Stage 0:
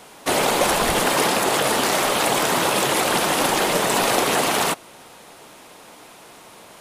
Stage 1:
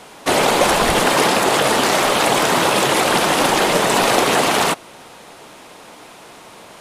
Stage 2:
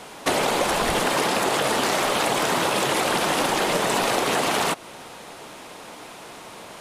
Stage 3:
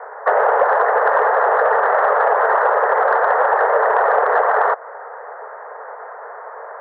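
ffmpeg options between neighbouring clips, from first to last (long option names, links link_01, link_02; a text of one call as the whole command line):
ffmpeg -i in.wav -af "highshelf=frequency=11000:gain=-9.5,volume=4.5dB" out.wav
ffmpeg -i in.wav -af "acompressor=threshold=-19dB:ratio=6" out.wav
ffmpeg -i in.wav -af "asuperpass=centerf=890:order=20:qfactor=0.63,acontrast=80,volume=2.5dB" out.wav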